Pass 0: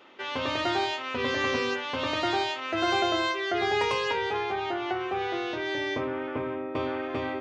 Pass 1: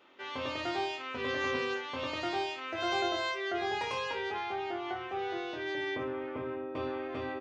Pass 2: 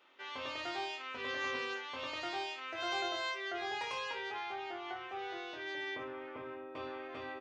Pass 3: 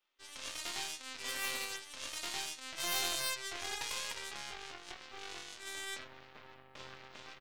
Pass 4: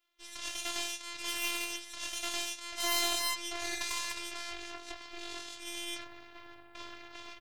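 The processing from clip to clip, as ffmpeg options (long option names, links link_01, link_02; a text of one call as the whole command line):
ffmpeg -i in.wav -af "aecho=1:1:23|59:0.501|0.316,volume=-8.5dB" out.wav
ffmpeg -i in.wav -af "lowshelf=frequency=460:gain=-11,volume=-2.5dB" out.wav
ffmpeg -i in.wav -af "aeval=exprs='0.0631*(cos(1*acos(clip(val(0)/0.0631,-1,1)))-cos(1*PI/2))+0.00891*(cos(5*acos(clip(val(0)/0.0631,-1,1)))-cos(5*PI/2))+0.0126*(cos(6*acos(clip(val(0)/0.0631,-1,1)))-cos(6*PI/2))+0.0141*(cos(7*acos(clip(val(0)/0.0631,-1,1)))-cos(7*PI/2))':channel_layout=same,crystalizer=i=4.5:c=0,volume=-6.5dB" out.wav
ffmpeg -i in.wav -af "afftfilt=real='hypot(re,im)*cos(PI*b)':imag='0':win_size=512:overlap=0.75,volume=7dB" out.wav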